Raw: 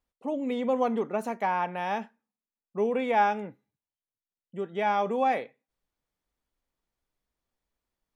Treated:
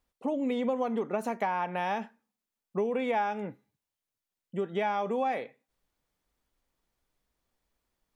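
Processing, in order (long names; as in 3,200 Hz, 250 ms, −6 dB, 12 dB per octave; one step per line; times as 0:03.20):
downward compressor 5 to 1, threshold −32 dBFS, peak gain reduction 12.5 dB
level +5 dB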